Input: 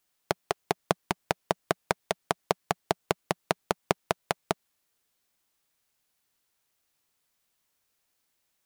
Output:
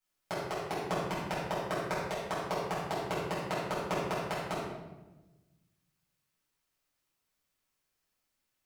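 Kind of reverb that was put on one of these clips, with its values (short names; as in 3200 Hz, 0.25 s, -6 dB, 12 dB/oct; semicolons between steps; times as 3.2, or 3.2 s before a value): shoebox room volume 600 m³, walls mixed, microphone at 7.6 m; gain -18 dB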